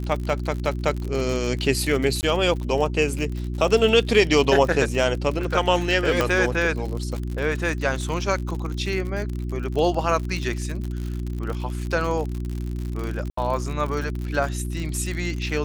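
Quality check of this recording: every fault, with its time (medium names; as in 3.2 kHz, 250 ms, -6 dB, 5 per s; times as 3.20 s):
crackle 65 per s -28 dBFS
hum 60 Hz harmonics 6 -28 dBFS
2.21–2.23 s: dropout 19 ms
6.21 s: pop -6 dBFS
13.30–13.37 s: dropout 74 ms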